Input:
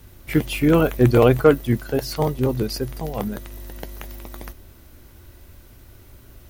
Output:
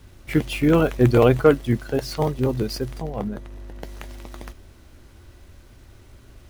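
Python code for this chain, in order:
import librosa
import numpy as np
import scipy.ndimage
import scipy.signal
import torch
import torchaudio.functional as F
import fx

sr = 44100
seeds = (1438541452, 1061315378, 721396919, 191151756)

y = scipy.signal.medfilt(x, 3)
y = fx.high_shelf(y, sr, hz=2200.0, db=-11.0, at=(3.01, 3.82), fade=0.02)
y = y * librosa.db_to_amplitude(-1.0)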